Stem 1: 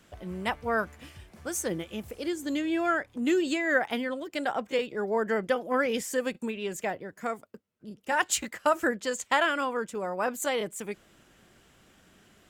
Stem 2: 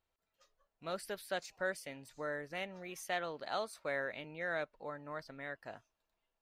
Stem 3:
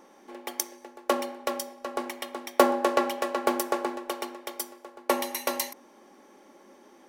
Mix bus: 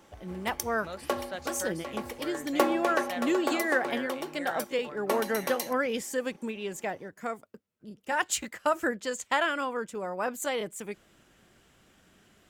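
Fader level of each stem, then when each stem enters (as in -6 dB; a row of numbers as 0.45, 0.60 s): -2.0, -0.5, -5.0 dB; 0.00, 0.00, 0.00 s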